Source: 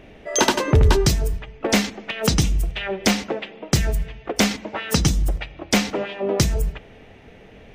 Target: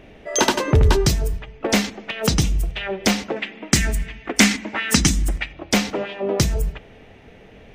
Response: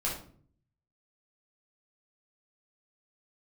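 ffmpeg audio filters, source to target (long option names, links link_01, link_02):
-filter_complex "[0:a]asettb=1/sr,asplit=3[link_01][link_02][link_03];[link_01]atrim=end=3.364[link_04];[link_02]atrim=start=3.36:end=5.53,asetpts=PTS-STARTPTS,afade=type=in:duration=0.004:curve=qsin,afade=type=out:start_time=2.166:duration=0.004:curve=qsin,equalizer=frequency=125:width_type=o:width=1:gain=-5,equalizer=frequency=250:width_type=o:width=1:gain=8,equalizer=frequency=500:width_type=o:width=1:gain=-6,equalizer=frequency=2000:width_type=o:width=1:gain=8,equalizer=frequency=8000:width_type=o:width=1:gain=8[link_05];[link_03]atrim=start=5.526[link_06];[link_04][link_05]acrossfade=duration=0.004:curve1=hsin:curve2=qsin[link_07];[link_07][link_06]acrossfade=duration=0.004:curve1=qsin:curve2=hsin"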